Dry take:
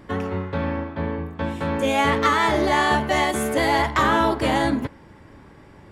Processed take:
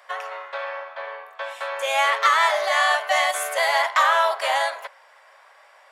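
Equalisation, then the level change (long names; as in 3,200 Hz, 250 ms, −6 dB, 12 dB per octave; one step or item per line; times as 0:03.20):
Butterworth high-pass 590 Hz 48 dB per octave
notch filter 870 Hz, Q 12
+2.5 dB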